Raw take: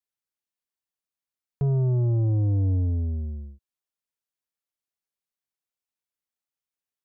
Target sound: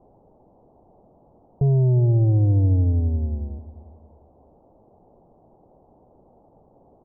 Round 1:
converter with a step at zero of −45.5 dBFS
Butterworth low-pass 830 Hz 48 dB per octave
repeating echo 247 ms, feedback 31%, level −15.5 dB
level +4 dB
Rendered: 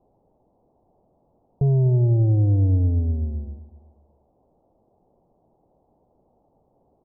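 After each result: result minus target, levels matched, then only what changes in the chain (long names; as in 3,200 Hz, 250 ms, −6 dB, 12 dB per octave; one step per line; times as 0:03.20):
echo 105 ms early; converter with a step at zero: distortion −9 dB
change: repeating echo 352 ms, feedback 31%, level −15.5 dB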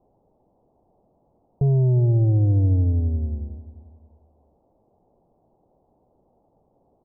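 converter with a step at zero: distortion −9 dB
change: converter with a step at zero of −36.5 dBFS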